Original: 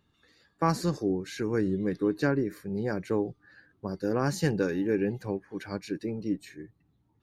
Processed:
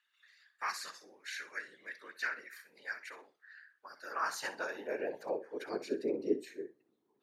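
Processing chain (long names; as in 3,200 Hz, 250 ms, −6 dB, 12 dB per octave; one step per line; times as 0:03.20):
flutter between parallel walls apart 10.6 metres, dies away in 0.28 s
random phases in short frames
high-pass filter sweep 1,800 Hz → 380 Hz, 0:03.67–0:05.84
level −5 dB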